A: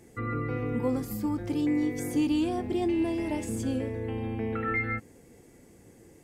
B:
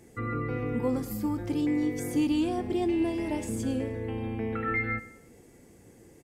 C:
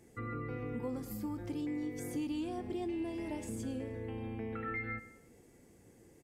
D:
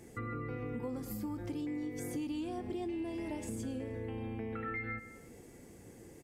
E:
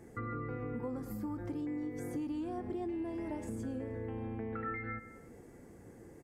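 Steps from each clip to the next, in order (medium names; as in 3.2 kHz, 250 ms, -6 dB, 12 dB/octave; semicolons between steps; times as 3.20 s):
feedback delay 103 ms, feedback 39%, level -17 dB
compression 2:1, threshold -31 dBFS, peak gain reduction 5 dB; trim -6.5 dB
compression 2:1, threshold -49 dBFS, peak gain reduction 8.5 dB; trim +7 dB
resonant high shelf 2.1 kHz -7.5 dB, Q 1.5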